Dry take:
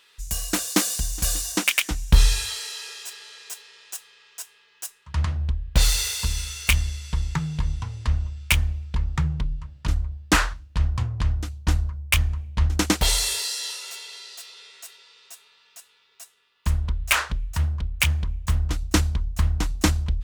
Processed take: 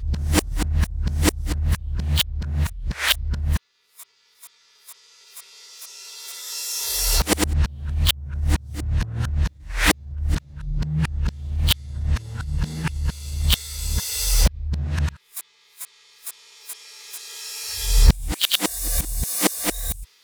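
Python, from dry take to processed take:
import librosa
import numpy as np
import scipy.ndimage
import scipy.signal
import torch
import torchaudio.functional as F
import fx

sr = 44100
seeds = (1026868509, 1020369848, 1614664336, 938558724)

y = x[::-1].copy()
y = fx.formant_shift(y, sr, semitones=5)
y = y * 10.0 ** (1.0 / 20.0)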